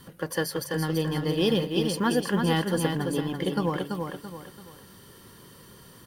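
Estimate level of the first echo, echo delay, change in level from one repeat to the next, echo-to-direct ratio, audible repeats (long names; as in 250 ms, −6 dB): −5.0 dB, 335 ms, −8.5 dB, −4.5 dB, 3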